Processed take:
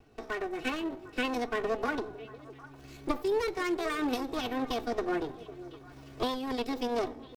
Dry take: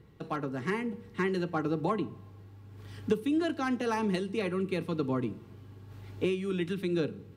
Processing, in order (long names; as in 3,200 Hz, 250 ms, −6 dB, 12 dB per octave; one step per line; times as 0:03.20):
lower of the sound and its delayed copy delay 3.7 ms
pitch shifter +5.5 semitones
echo through a band-pass that steps 251 ms, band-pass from 160 Hz, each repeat 1.4 octaves, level −10 dB